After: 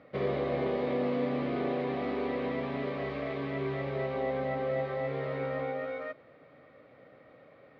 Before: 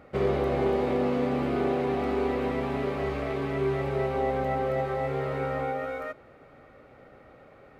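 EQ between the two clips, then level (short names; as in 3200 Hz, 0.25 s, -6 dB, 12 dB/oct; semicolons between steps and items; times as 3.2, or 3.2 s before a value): speaker cabinet 160–4200 Hz, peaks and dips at 220 Hz -5 dB, 380 Hz -8 dB, 830 Hz -9 dB, 1400 Hz -8 dB, 2700 Hz -5 dB; 0.0 dB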